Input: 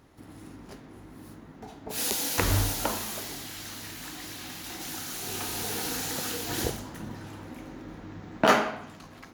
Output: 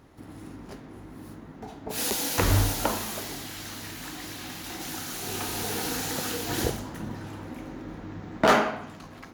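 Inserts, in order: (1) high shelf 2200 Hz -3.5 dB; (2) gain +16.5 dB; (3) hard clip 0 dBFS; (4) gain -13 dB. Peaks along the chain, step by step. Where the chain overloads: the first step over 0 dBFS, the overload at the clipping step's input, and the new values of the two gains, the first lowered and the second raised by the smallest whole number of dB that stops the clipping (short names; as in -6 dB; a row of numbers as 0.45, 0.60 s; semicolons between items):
-7.5, +9.0, 0.0, -13.0 dBFS; step 2, 9.0 dB; step 2 +7.5 dB, step 4 -4 dB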